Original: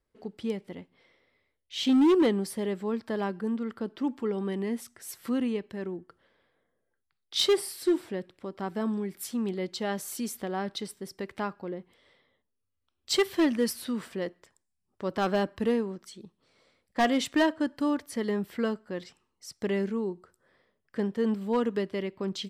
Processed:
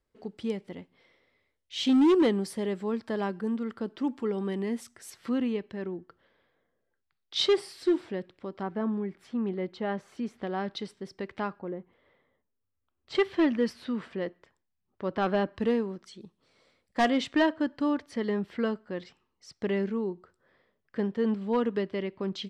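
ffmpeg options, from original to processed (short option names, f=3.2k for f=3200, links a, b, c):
-af "asetnsamples=n=441:p=0,asendcmd='5.1 lowpass f 5000;8.63 lowpass f 2100;10.42 lowpass f 4400;11.59 lowpass f 1800;13.15 lowpass f 3300;15.54 lowpass f 5600;16.21 lowpass f 10000;17.08 lowpass f 4400',lowpass=9.2k"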